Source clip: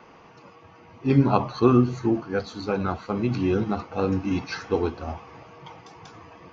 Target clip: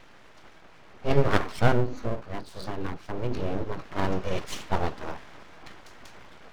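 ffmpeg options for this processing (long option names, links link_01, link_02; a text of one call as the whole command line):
ffmpeg -i in.wav -filter_complex "[0:a]asettb=1/sr,asplit=3[link_01][link_02][link_03];[link_01]atrim=end=1.724[link_04];[link_02]atrim=start=1.72:end=3.85,asetpts=PTS-STARTPTS,afade=type=in:duration=0.004:curve=qsin,afade=type=out:start_time=2.126:duration=0.004:curve=qsin,acrossover=split=270[link_05][link_06];[link_06]acompressor=threshold=-35dB:ratio=4[link_07];[link_05][link_07]amix=inputs=2:normalize=0[link_08];[link_03]atrim=start=3.846[link_09];[link_04][link_08]acrossfade=duration=0.004:curve1=hsin:curve2=qsin[link_10];[link_10][link_09]acrossfade=duration=0.004:curve1=qsin:curve2=hsin,aeval=exprs='abs(val(0))':channel_layout=same" out.wav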